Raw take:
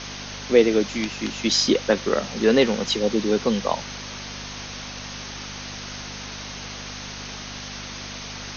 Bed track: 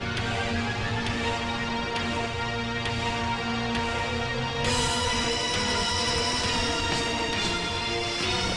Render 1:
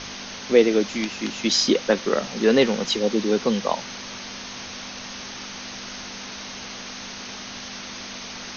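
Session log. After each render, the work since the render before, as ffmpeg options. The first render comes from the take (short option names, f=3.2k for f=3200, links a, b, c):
-af "bandreject=f=50:t=h:w=4,bandreject=f=100:t=h:w=4,bandreject=f=150:t=h:w=4"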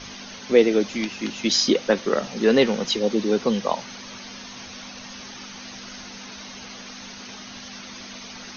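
-af "afftdn=nr=8:nf=-37"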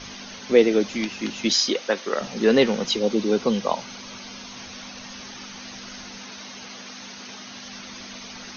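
-filter_complex "[0:a]asettb=1/sr,asplit=3[a][b][c];[a]atrim=end=1.534[d];[b]atrim=start=1.53:end=2.21,asetpts=PTS-STARTPTS,afade=t=in:d=0.004:c=qsin,afade=t=out:st=0.676:d=0.004:c=qsin,highpass=f=590:p=1[e];[c]atrim=start=2.206[f];[d][e]acrossfade=d=0.004:c1=hsin:c2=qsin[g];[g][f]acrossfade=d=0.004:c1=qsin:c2=hsin,asettb=1/sr,asplit=3[h][i][j];[h]atrim=end=2.864[k];[i]atrim=start=2.86:end=4.53,asetpts=PTS-STARTPTS,afade=t=in:d=0.004:c=qsin,afade=t=out:st=1.666:d=0.004:c=qsin,bandreject=f=1.8k:w=11[l];[j]atrim=start=4.526[m];[k][l]acrossfade=d=0.004:c1=hsin:c2=qsin[n];[n][m]acrossfade=d=0.004:c1=qsin:c2=hsin,asettb=1/sr,asplit=3[o][p][q];[o]atrim=end=6.234[r];[p]atrim=start=6.23:end=7.66,asetpts=PTS-STARTPTS,afade=t=in:d=0.004:c=qsin,afade=t=out:st=1.426:d=0.004:c=qsin,highpass=f=140:p=1[s];[q]atrim=start=7.656[t];[r][s]acrossfade=d=0.004:c1=hsin:c2=qsin[u];[u][t]acrossfade=d=0.004:c1=qsin:c2=hsin"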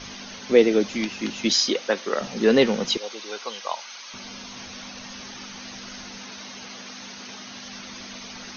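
-filter_complex "[0:a]asettb=1/sr,asplit=3[a][b][c];[a]atrim=end=2.974[d];[b]atrim=start=2.97:end=4.14,asetpts=PTS-STARTPTS,afade=t=in:d=0.004:c=qsin,afade=t=out:st=1.166:d=0.004:c=qsin,highpass=980[e];[c]atrim=start=4.136[f];[d][e]acrossfade=d=0.004:c1=hsin:c2=qsin[g];[g][f]acrossfade=d=0.004:c1=qsin:c2=hsin"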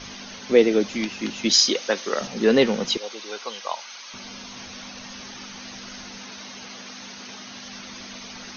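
-filter_complex "[0:a]asettb=1/sr,asplit=3[a][b][c];[a]atrim=end=1.534[d];[b]atrim=start=1.53:end=2.27,asetpts=PTS-STARTPTS,afade=t=in:d=0.004:c=qsin,afade=t=out:st=0.736:d=0.004:c=qsin,aemphasis=mode=production:type=cd[e];[c]atrim=start=2.266[f];[d][e]acrossfade=d=0.004:c1=hsin:c2=qsin[g];[g][f]acrossfade=d=0.004:c1=qsin:c2=hsin"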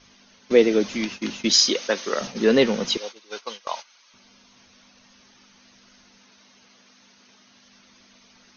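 -af "bandreject=f=780:w=16,agate=range=-16dB:threshold=-33dB:ratio=16:detection=peak"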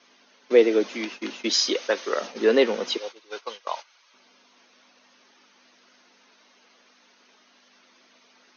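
-af "highpass=f=290:w=0.5412,highpass=f=290:w=1.3066,aemphasis=mode=reproduction:type=50kf"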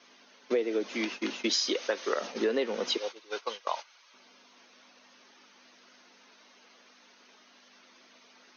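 -af "acompressor=threshold=-25dB:ratio=8"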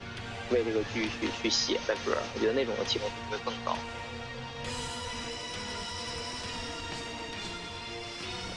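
-filter_complex "[1:a]volume=-11.5dB[a];[0:a][a]amix=inputs=2:normalize=0"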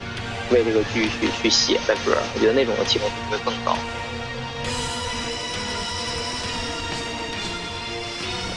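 -af "volume=10dB"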